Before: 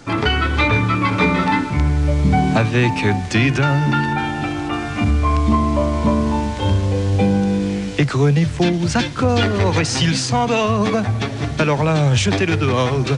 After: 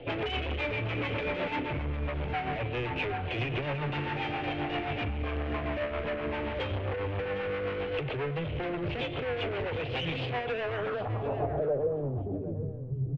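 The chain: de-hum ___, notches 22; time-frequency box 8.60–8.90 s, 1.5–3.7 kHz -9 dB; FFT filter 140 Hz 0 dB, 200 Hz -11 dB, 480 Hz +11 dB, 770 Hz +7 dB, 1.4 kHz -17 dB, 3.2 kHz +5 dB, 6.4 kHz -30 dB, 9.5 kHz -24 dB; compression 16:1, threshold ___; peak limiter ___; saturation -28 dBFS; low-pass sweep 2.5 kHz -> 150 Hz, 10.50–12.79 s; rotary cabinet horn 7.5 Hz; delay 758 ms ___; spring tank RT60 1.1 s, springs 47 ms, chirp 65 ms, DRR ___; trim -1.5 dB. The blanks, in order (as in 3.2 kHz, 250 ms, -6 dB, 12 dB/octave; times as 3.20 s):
346 Hz, -16 dBFS, -11.5 dBFS, -13.5 dB, 19.5 dB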